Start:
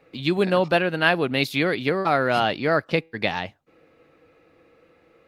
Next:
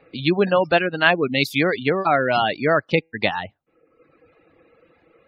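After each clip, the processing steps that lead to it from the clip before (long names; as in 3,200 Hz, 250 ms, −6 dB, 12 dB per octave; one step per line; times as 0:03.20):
reverb reduction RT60 1 s
gate on every frequency bin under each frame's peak −30 dB strong
level +3.5 dB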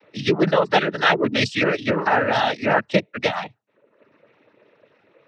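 cochlear-implant simulation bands 12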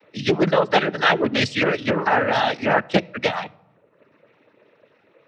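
on a send at −22.5 dB: convolution reverb RT60 1.1 s, pre-delay 4 ms
on the sum: highs frequency-modulated by the lows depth 0.3 ms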